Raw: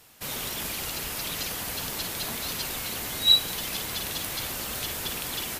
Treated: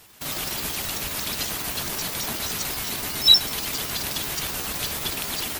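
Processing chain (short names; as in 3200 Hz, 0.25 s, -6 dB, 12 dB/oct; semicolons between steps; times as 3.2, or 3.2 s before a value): trilling pitch shifter +5.5 st, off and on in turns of 63 ms; notch 510 Hz, Q 12; gain +4.5 dB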